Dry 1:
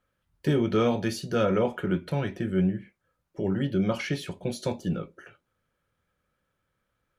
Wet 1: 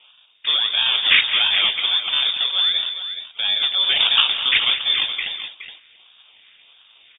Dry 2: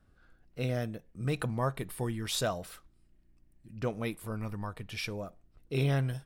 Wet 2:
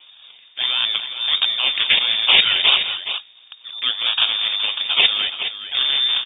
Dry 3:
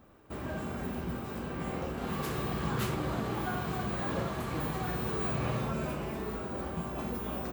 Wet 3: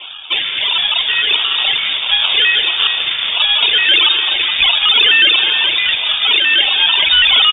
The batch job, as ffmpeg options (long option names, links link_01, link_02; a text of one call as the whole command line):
ffmpeg -i in.wav -filter_complex "[0:a]highpass=57,bandreject=frequency=1500:width=12,areverse,acompressor=threshold=-39dB:ratio=4,areverse,crystalizer=i=6:c=0,acrusher=samples=21:mix=1:aa=0.000001:lfo=1:lforange=12.6:lforate=1.5,asoftclip=type=hard:threshold=-22.5dB,asplit=2[link_01][link_02];[link_02]aecho=0:1:169|211|420:0.15|0.211|0.299[link_03];[link_01][link_03]amix=inputs=2:normalize=0,lowpass=frequency=3100:width_type=q:width=0.5098,lowpass=frequency=3100:width_type=q:width=0.6013,lowpass=frequency=3100:width_type=q:width=0.9,lowpass=frequency=3100:width_type=q:width=2.563,afreqshift=-3700,alimiter=level_in=19.5dB:limit=-1dB:release=50:level=0:latency=1,volume=-1dB" out.wav